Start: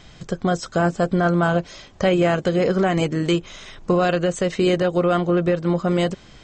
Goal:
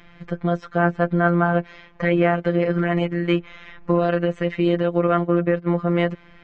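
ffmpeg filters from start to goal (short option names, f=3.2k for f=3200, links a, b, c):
-filter_complex "[0:a]asettb=1/sr,asplit=3[a][b][c];[a]atrim=end=5.074[d];[b]atrim=start=5.07:end=5.72,asetpts=PTS-STARTPTS,afade=t=in:d=0.004:c=qsin,afade=t=out:st=0.646:d=0.004:c=qsin,agate=range=-11dB:threshold=-21dB:ratio=16:detection=peak[e];[c]atrim=start=5.716[f];[d][e]acrossfade=d=0.004:c1=hsin:c2=qsin[g];[g][f]acrossfade=d=0.004:c1=qsin:c2=hsin,lowpass=f=2.1k:t=q:w=1.8,afftfilt=real='hypot(re,im)*cos(PI*b)':imag='0':win_size=1024:overlap=0.75"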